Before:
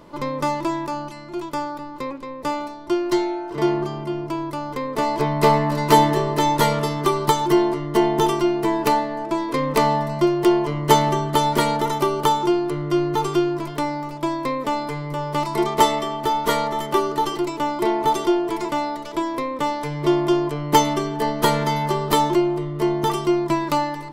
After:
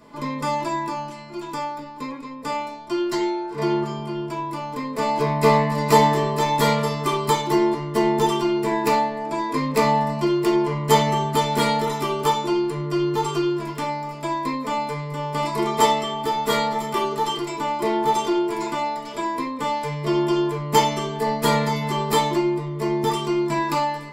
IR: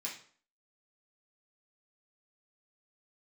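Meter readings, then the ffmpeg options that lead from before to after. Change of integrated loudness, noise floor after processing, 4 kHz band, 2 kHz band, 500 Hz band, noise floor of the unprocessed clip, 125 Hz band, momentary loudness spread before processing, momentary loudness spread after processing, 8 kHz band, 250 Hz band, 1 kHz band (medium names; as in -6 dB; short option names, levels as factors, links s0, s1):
-1.0 dB, -35 dBFS, 0.0 dB, +0.5 dB, -1.5 dB, -34 dBFS, -0.5 dB, 9 LU, 10 LU, -1.0 dB, -2.0 dB, -1.0 dB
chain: -filter_complex "[0:a]bandreject=f=308.3:t=h:w=4,bandreject=f=616.6:t=h:w=4,bandreject=f=924.9:t=h:w=4,bandreject=f=1233.2:t=h:w=4,bandreject=f=1541.5:t=h:w=4,bandreject=f=1849.8:t=h:w=4,bandreject=f=2158.1:t=h:w=4,bandreject=f=2466.4:t=h:w=4,bandreject=f=2774.7:t=h:w=4,bandreject=f=3083:t=h:w=4,bandreject=f=3391.3:t=h:w=4,bandreject=f=3699.6:t=h:w=4,bandreject=f=4007.9:t=h:w=4,bandreject=f=4316.2:t=h:w=4,bandreject=f=4624.5:t=h:w=4,bandreject=f=4932.8:t=h:w=4,bandreject=f=5241.1:t=h:w=4,bandreject=f=5549.4:t=h:w=4,bandreject=f=5857.7:t=h:w=4,bandreject=f=6166:t=h:w=4,bandreject=f=6474.3:t=h:w=4[s0];[1:a]atrim=start_sample=2205,afade=t=out:st=0.16:d=0.01,atrim=end_sample=7497[s1];[s0][s1]afir=irnorm=-1:irlink=0"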